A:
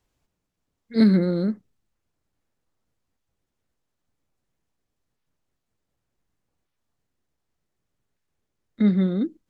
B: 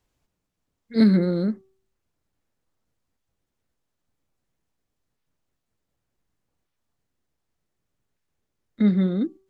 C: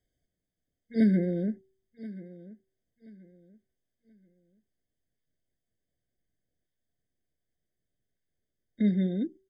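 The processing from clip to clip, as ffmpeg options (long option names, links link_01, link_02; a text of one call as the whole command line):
ffmpeg -i in.wav -af "bandreject=frequency=383.3:width_type=h:width=4,bandreject=frequency=766.6:width_type=h:width=4,bandreject=frequency=1149.9:width_type=h:width=4" out.wav
ffmpeg -i in.wav -af "aecho=1:1:1030|2060|3090:0.126|0.0365|0.0106,afftfilt=real='re*eq(mod(floor(b*sr/1024/750),2),0)':imag='im*eq(mod(floor(b*sr/1024/750),2),0)':win_size=1024:overlap=0.75,volume=-6dB" out.wav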